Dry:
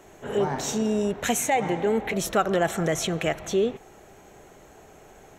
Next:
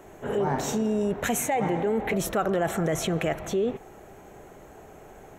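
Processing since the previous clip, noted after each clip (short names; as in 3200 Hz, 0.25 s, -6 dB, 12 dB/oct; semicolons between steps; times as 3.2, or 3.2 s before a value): bell 4900 Hz -8 dB 2.1 oct; in parallel at +0.5 dB: negative-ratio compressor -28 dBFS, ratio -1; on the sum: gain -5 dB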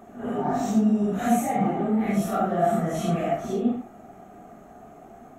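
phase scrambler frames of 0.2 s; small resonant body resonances 230/700/1200 Hz, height 16 dB, ringing for 40 ms; gain -6.5 dB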